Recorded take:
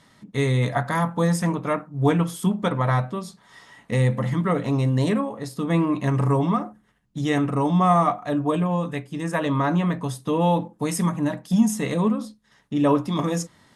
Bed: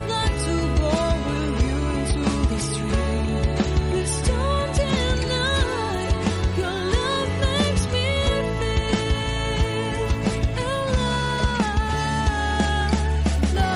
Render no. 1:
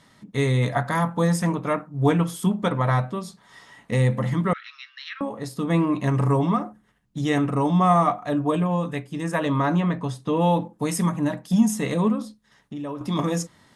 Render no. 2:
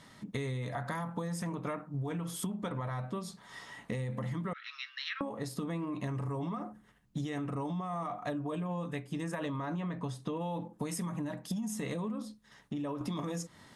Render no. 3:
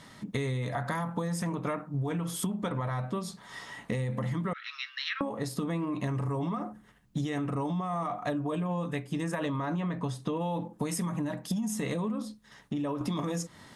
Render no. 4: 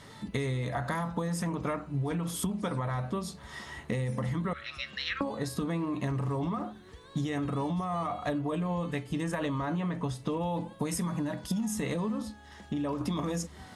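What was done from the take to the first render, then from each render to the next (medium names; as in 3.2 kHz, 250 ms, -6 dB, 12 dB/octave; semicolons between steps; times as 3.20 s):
4.53–5.21 s: Chebyshev band-pass 1.3–5.5 kHz, order 5; 9.80–10.37 s: distance through air 60 m; 12.22–13.01 s: compression 3:1, threshold -33 dBFS
peak limiter -18 dBFS, peak gain reduction 11 dB; compression 12:1, threshold -33 dBFS, peak gain reduction 12.5 dB
trim +4.5 dB
add bed -30 dB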